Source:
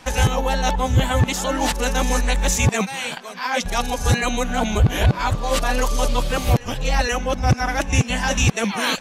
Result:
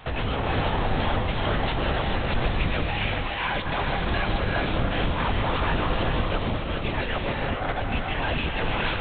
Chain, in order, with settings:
0:06.10–0:08.19: shaped tremolo saw up 7.4 Hz, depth 90%
gain into a clipping stage and back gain 25 dB
linear-prediction vocoder at 8 kHz whisper
reverb whose tail is shaped and stops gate 460 ms rising, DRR 0.5 dB

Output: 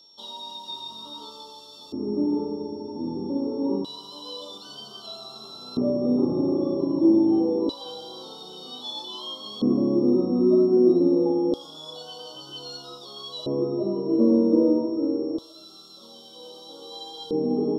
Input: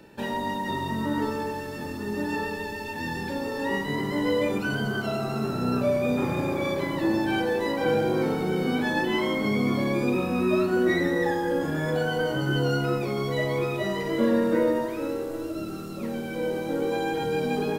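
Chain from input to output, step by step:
auto-filter band-pass square 0.26 Hz 310–3,400 Hz
elliptic band-stop filter 1,200–3,400 Hz, stop band 40 dB
steady tone 5,500 Hz −60 dBFS
level +8.5 dB

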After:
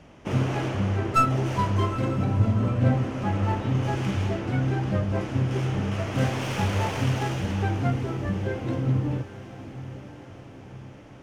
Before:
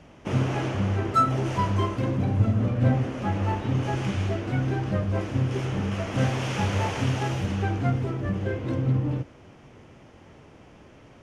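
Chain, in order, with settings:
stylus tracing distortion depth 0.074 ms
on a send: feedback delay with all-pass diffusion 865 ms, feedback 57%, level −14 dB

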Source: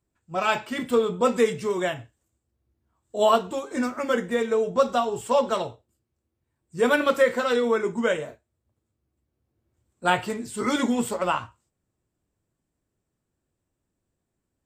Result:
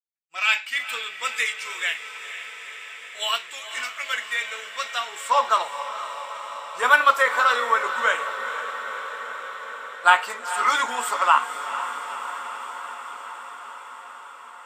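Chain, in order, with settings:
downward expander −39 dBFS
high-pass filter sweep 2,200 Hz → 1,100 Hz, 0:04.88–0:05.39
on a send: feedback delay with all-pass diffusion 476 ms, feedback 76%, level −11 dB
on the sum: level +3.5 dB

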